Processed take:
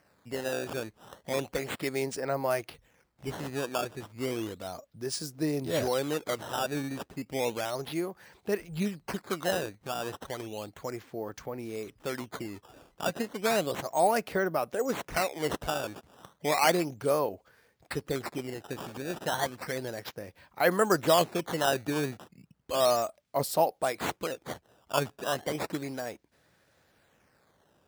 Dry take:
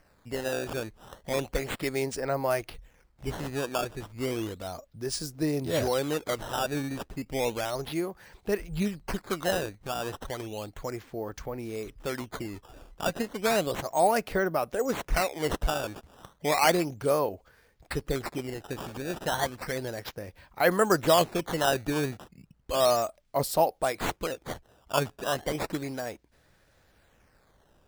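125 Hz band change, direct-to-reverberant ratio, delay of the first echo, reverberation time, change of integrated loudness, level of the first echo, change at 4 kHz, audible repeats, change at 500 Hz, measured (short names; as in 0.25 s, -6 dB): -3.0 dB, none, none, none, -1.5 dB, none, -1.5 dB, none, -1.5 dB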